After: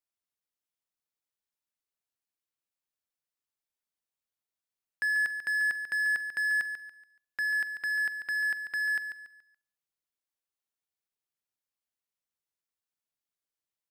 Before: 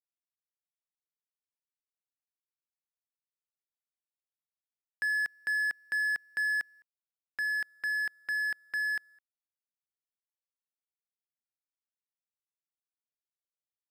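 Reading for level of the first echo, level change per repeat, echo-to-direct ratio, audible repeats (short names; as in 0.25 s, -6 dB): -9.0 dB, -9.5 dB, -8.5 dB, 3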